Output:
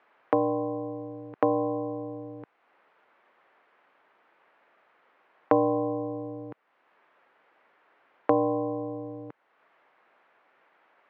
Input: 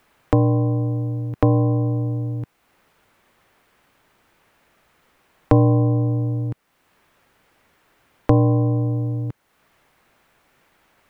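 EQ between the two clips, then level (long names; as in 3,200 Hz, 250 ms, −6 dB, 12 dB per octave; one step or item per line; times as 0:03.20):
band-pass filter 460–2,100 Hz
high-frequency loss of the air 69 metres
0.0 dB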